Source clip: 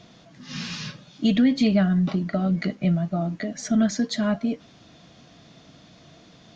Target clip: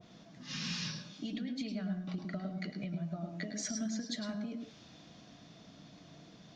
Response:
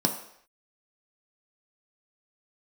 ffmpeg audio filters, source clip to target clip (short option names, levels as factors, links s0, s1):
-filter_complex "[0:a]acompressor=threshold=0.0282:ratio=12,asplit=2[s0][s1];[1:a]atrim=start_sample=2205,lowshelf=f=110:g=-11.5,adelay=105[s2];[s1][s2]afir=irnorm=-1:irlink=0,volume=0.158[s3];[s0][s3]amix=inputs=2:normalize=0,adynamicequalizer=threshold=0.00251:dfrequency=1600:dqfactor=0.7:tfrequency=1600:tqfactor=0.7:attack=5:release=100:ratio=0.375:range=2.5:mode=boostabove:tftype=highshelf,volume=0.422"